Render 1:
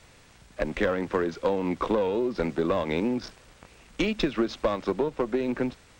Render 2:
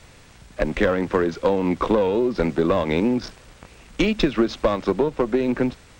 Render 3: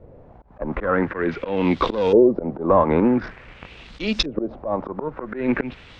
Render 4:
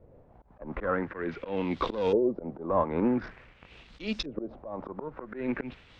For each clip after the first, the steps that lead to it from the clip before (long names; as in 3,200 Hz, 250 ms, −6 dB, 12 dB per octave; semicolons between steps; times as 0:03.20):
low-shelf EQ 220 Hz +3.5 dB; level +5 dB
volume swells 169 ms; auto-filter low-pass saw up 0.47 Hz 470–5,800 Hz; level +2.5 dB
amplitude modulation by smooth noise, depth 65%; level −6.5 dB